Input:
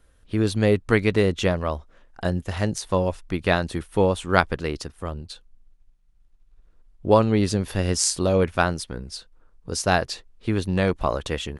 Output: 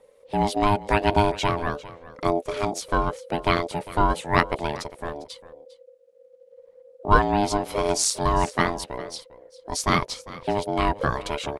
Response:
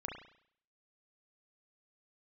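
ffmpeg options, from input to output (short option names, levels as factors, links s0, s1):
-af "aphaser=in_gain=1:out_gain=1:delay=4.5:decay=0.33:speed=0.87:type=triangular,aecho=1:1:401:0.126,aeval=exprs='val(0)*sin(2*PI*510*n/s)':c=same,volume=1.19"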